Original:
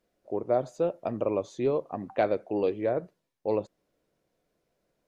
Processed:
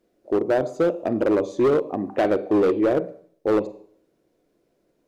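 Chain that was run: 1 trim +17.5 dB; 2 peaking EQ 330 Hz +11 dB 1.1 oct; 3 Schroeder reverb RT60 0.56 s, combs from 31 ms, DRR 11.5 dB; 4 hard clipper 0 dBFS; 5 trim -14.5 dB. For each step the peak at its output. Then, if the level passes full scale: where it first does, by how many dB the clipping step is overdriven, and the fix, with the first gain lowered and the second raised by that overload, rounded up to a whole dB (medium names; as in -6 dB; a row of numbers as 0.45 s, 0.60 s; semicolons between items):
+4.0 dBFS, +9.0 dBFS, +9.5 dBFS, 0.0 dBFS, -14.5 dBFS; step 1, 9.5 dB; step 1 +7.5 dB, step 5 -4.5 dB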